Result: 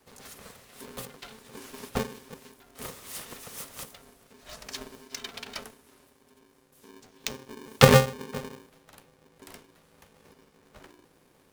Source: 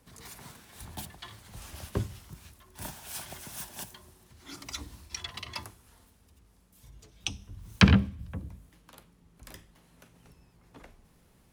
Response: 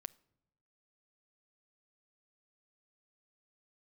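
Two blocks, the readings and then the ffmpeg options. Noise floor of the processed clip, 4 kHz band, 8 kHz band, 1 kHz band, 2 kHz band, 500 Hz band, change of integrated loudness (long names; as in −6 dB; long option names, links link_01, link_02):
−63 dBFS, +3.0 dB, +4.5 dB, +9.0 dB, +3.5 dB, +15.5 dB, +4.0 dB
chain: -af "adynamicequalizer=threshold=0.00251:dfrequency=200:dqfactor=3.3:tfrequency=200:tqfactor=3.3:attack=5:release=100:ratio=0.375:range=3.5:mode=boostabove:tftype=bell,aeval=exprs='val(0)*sgn(sin(2*PI*330*n/s))':channel_layout=same"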